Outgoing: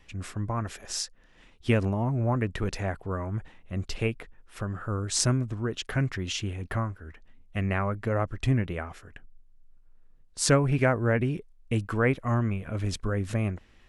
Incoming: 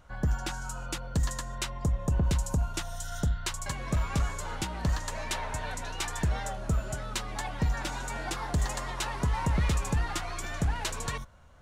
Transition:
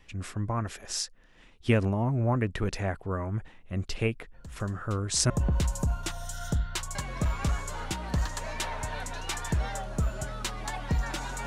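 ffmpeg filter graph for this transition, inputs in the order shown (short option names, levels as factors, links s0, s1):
-filter_complex "[1:a]asplit=2[s0][s1];[0:a]apad=whole_dur=11.46,atrim=end=11.46,atrim=end=5.302[s2];[s1]atrim=start=2.008:end=8.17[s3];[s0]atrim=start=1.05:end=2.01,asetpts=PTS-STARTPTS,volume=0.133,afade=t=in:d=0.004:c=hsin,afade=t=out:st=0.956:d=0.004:c=hsin,adelay=4340[s4];[s2][s3]acrossfade=d=0.004:c1=hsin:c2=hsin[s5];[s5][s4]amix=inputs=2:normalize=0"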